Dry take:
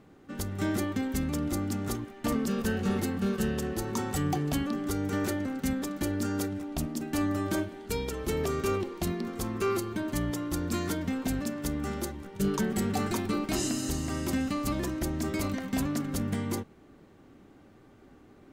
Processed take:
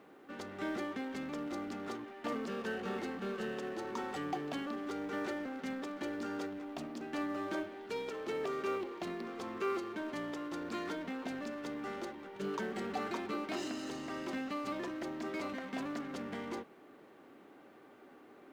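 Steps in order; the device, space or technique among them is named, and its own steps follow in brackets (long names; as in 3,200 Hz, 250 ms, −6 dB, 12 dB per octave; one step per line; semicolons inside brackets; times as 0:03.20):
phone line with mismatched companding (band-pass filter 360–3,300 Hz; mu-law and A-law mismatch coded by mu)
level −5.5 dB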